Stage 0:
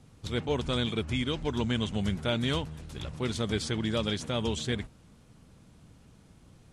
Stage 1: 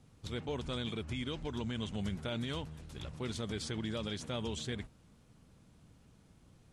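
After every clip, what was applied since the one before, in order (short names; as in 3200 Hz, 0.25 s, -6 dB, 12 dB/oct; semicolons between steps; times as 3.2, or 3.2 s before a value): limiter -22 dBFS, peak gain reduction 5.5 dB; gain -6 dB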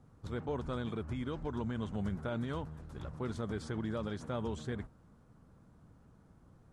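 resonant high shelf 1900 Hz -10 dB, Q 1.5; gain +1 dB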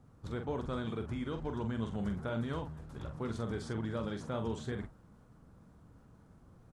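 doubler 44 ms -7 dB; reverse; upward compressor, threshold -54 dBFS; reverse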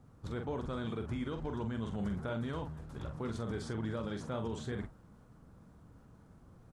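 limiter -29.5 dBFS, peak gain reduction 5 dB; gain +1 dB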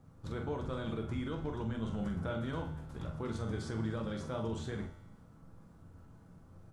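resonator 88 Hz, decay 1 s, harmonics all, mix 70%; shoebox room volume 230 m³, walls furnished, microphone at 0.7 m; gain +8 dB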